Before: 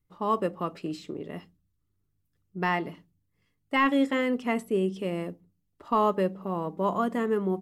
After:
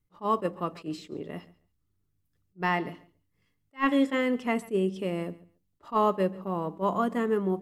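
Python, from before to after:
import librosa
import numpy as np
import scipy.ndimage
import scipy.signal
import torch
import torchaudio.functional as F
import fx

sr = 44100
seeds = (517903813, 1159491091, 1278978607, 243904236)

p1 = x + fx.echo_feedback(x, sr, ms=140, feedback_pct=18, wet_db=-21.0, dry=0)
y = fx.attack_slew(p1, sr, db_per_s=380.0)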